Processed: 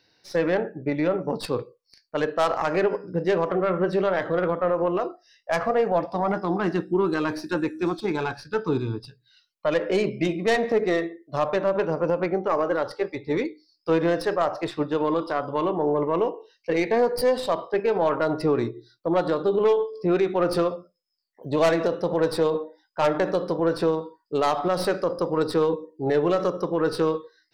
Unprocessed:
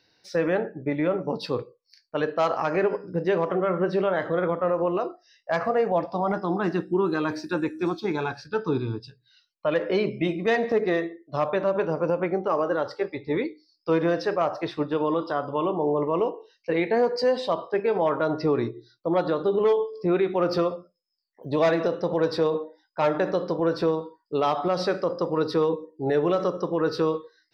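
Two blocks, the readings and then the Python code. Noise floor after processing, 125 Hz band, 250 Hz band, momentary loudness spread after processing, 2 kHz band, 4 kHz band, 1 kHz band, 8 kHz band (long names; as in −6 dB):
−70 dBFS, +0.5 dB, +1.0 dB, 7 LU, +1.0 dB, +1.5 dB, +1.0 dB, can't be measured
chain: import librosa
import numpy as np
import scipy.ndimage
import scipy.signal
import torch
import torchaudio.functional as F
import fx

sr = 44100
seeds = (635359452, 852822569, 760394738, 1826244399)

y = fx.tracing_dist(x, sr, depth_ms=0.1)
y = y * 10.0 ** (1.0 / 20.0)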